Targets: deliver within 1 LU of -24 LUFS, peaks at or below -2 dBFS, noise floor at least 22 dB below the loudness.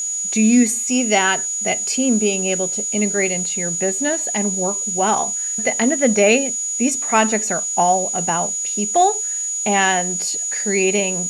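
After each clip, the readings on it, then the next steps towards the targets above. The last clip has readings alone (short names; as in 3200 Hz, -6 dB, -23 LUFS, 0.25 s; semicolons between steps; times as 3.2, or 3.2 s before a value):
steady tone 6800 Hz; tone level -21 dBFS; noise floor -24 dBFS; noise floor target -40 dBFS; loudness -17.5 LUFS; peak -2.0 dBFS; loudness target -24.0 LUFS
-> notch 6800 Hz, Q 30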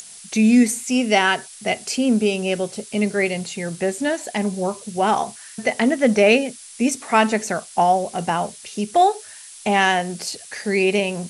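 steady tone none; noise floor -41 dBFS; noise floor target -43 dBFS
-> denoiser 6 dB, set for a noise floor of -41 dBFS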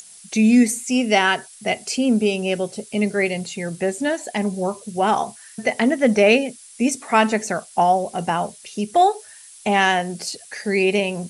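noise floor -44 dBFS; loudness -20.5 LUFS; peak -2.5 dBFS; loudness target -24.0 LUFS
-> gain -3.5 dB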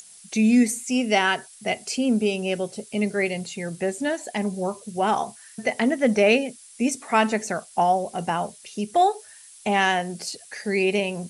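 loudness -24.0 LUFS; peak -6.0 dBFS; noise floor -48 dBFS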